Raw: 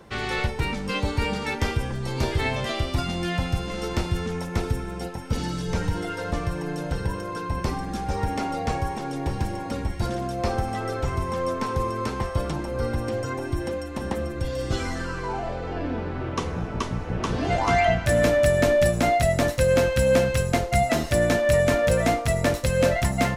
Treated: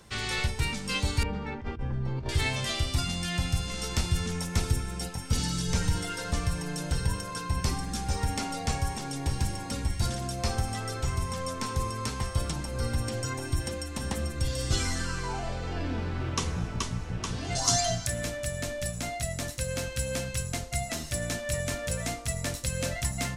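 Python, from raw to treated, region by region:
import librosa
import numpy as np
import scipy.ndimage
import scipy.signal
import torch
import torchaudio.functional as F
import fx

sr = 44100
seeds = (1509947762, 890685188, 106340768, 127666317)

y = fx.chain(x, sr, fx.bessel_lowpass(hz=990.0, order=2),
    fx.over_compress(threshold_db=-27.0, ratio=-0.5), at=(1.23, 2.29))
y = fx.chain(y, sr, fx.high_shelf_res(hz=3700.0, db=11.0, q=1.5),
    fx.comb(ms=7.4, depth=0.97), at=(17.55, 18.07))
y = fx.hum_notches(y, sr, base_hz=50, count=7)
y = fx.rider(y, sr, range_db=10, speed_s=2.0)
y = fx.curve_eq(y, sr, hz=(110.0, 510.0, 2100.0, 8400.0, 14000.0), db=(0, -9, -2, 9, 3))
y = y * 10.0 ** (-4.0 / 20.0)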